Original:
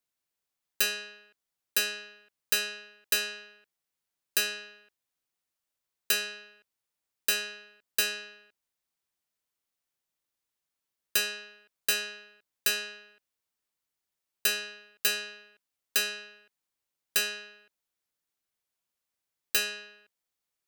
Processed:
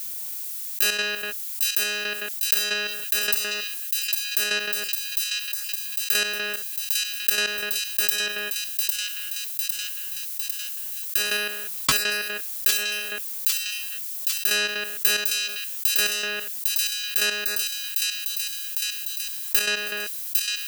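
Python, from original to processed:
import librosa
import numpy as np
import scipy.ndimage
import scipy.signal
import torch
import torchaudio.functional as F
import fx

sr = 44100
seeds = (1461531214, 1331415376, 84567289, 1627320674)

p1 = fx.step_gate(x, sr, bpm=183, pattern='x..xx.....x.xx.', floor_db=-12.0, edge_ms=4.5)
p2 = fx.level_steps(p1, sr, step_db=21)
p3 = p1 + (p2 * librosa.db_to_amplitude(-2.0))
p4 = fx.high_shelf(p3, sr, hz=11000.0, db=12.0)
p5 = fx.resample_bad(p4, sr, factor=3, down='none', up='hold', at=(11.25, 11.92))
p6 = fx.dmg_noise_colour(p5, sr, seeds[0], colour='violet', level_db=-66.0)
p7 = p6 + fx.echo_wet_highpass(p6, sr, ms=803, feedback_pct=42, hz=3200.0, wet_db=-6.5, dry=0)
p8 = fx.env_flatten(p7, sr, amount_pct=70)
y = p8 * librosa.db_to_amplitude(-3.0)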